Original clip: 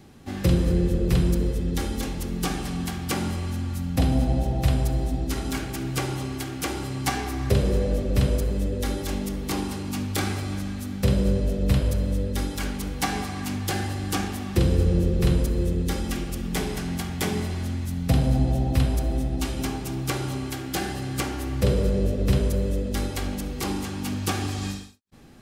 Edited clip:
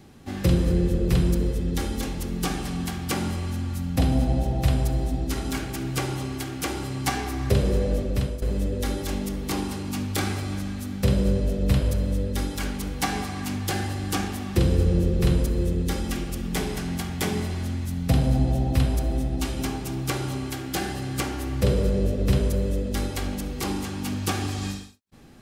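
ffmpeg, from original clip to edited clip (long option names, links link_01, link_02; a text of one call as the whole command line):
ffmpeg -i in.wav -filter_complex "[0:a]asplit=2[link_01][link_02];[link_01]atrim=end=8.42,asetpts=PTS-STARTPTS,afade=type=out:start_time=8:duration=0.42:silence=0.237137[link_03];[link_02]atrim=start=8.42,asetpts=PTS-STARTPTS,afade=type=in:duration=0.004:curve=hsin:silence=0.237137[link_04];[link_03][link_04]concat=n=2:v=0:a=1" out.wav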